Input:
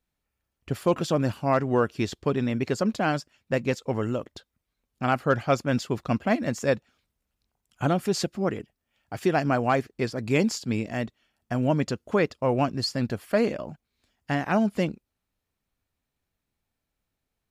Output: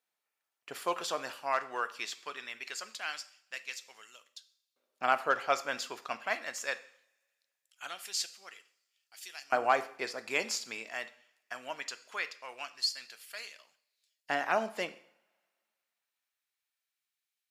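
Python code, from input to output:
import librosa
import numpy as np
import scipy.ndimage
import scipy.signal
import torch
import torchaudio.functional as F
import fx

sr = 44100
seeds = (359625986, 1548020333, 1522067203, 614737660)

y = fx.rev_double_slope(x, sr, seeds[0], early_s=0.59, late_s=2.3, knee_db=-26, drr_db=10.5)
y = fx.filter_lfo_highpass(y, sr, shape='saw_up', hz=0.21, low_hz=580.0, high_hz=4500.0, q=0.74)
y = y * librosa.db_to_amplitude(-1.5)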